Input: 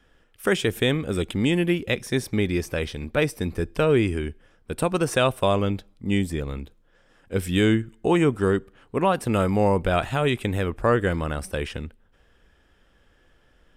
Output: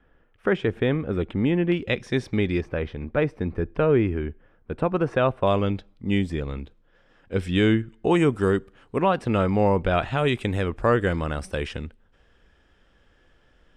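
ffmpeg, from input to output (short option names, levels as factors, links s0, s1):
-af "asetnsamples=n=441:p=0,asendcmd='1.72 lowpass f 4000;2.61 lowpass f 1800;5.47 lowpass f 4500;8.11 lowpass f 9000;9.01 lowpass f 4100;10.18 lowpass f 7100',lowpass=1800"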